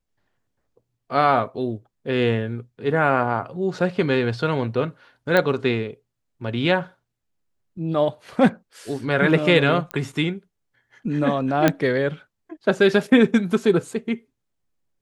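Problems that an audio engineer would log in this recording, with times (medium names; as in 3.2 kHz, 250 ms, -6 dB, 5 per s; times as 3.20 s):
5.37 s: pop -7 dBFS
9.91 s: pop -14 dBFS
11.68 s: pop -3 dBFS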